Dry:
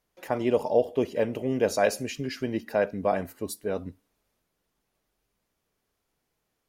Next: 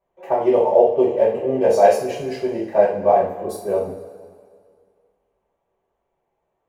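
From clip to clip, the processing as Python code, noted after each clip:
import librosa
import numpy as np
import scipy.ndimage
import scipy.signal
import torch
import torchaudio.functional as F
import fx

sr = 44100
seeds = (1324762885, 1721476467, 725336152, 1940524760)

y = fx.wiener(x, sr, points=9)
y = fx.band_shelf(y, sr, hz=630.0, db=10.0, octaves=1.7)
y = fx.rev_double_slope(y, sr, seeds[0], early_s=0.44, late_s=2.1, knee_db=-16, drr_db=-9.5)
y = y * 10.0 ** (-9.0 / 20.0)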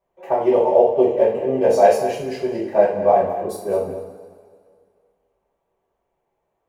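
y = x + 10.0 ** (-12.5 / 20.0) * np.pad(x, (int(207 * sr / 1000.0), 0))[:len(x)]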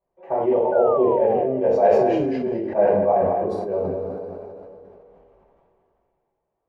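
y = fx.spec_paint(x, sr, seeds[1], shape='fall', start_s=0.72, length_s=1.76, low_hz=230.0, high_hz=1500.0, level_db=-29.0)
y = fx.spacing_loss(y, sr, db_at_10k=33)
y = fx.sustainer(y, sr, db_per_s=21.0)
y = y * 10.0 ** (-3.0 / 20.0)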